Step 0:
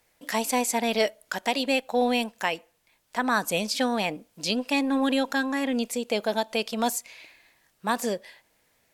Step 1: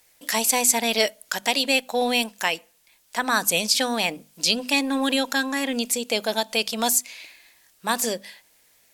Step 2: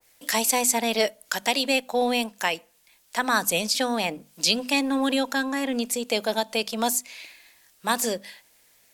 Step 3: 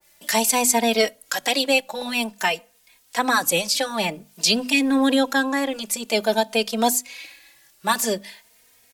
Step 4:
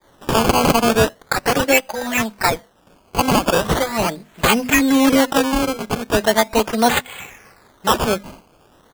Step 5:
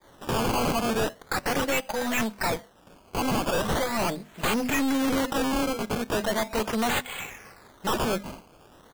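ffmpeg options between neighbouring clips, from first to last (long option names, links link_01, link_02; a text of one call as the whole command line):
ffmpeg -i in.wav -af "highshelf=frequency=2600:gain=11.5,bandreject=frequency=50:width_type=h:width=6,bandreject=frequency=100:width_type=h:width=6,bandreject=frequency=150:width_type=h:width=6,bandreject=frequency=200:width_type=h:width=6,bandreject=frequency=250:width_type=h:width=6" out.wav
ffmpeg -i in.wav -filter_complex "[0:a]acrossover=split=170|1700[link_01][link_02][link_03];[link_01]acrusher=bits=2:mode=log:mix=0:aa=0.000001[link_04];[link_04][link_02][link_03]amix=inputs=3:normalize=0,adynamicequalizer=threshold=0.0141:dfrequency=1600:dqfactor=0.7:tfrequency=1600:tqfactor=0.7:attack=5:release=100:ratio=0.375:range=3:mode=cutabove:tftype=highshelf" out.wav
ffmpeg -i in.wav -filter_complex "[0:a]asplit=2[link_01][link_02];[link_02]adelay=3,afreqshift=0.51[link_03];[link_01][link_03]amix=inputs=2:normalize=1,volume=6dB" out.wav
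ffmpeg -i in.wav -af "acrusher=samples=16:mix=1:aa=0.000001:lfo=1:lforange=16:lforate=0.39,volume=4.5dB" out.wav
ffmpeg -i in.wav -af "aeval=exprs='(tanh(14.1*val(0)+0.35)-tanh(0.35))/14.1':channel_layout=same" out.wav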